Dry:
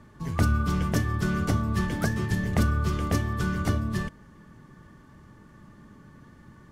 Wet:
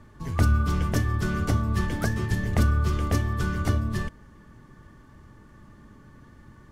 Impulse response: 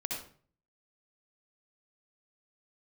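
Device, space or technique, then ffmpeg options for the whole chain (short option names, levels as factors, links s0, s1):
low shelf boost with a cut just above: -af "lowshelf=f=80:g=7,equalizer=f=170:t=o:w=0.55:g=-5"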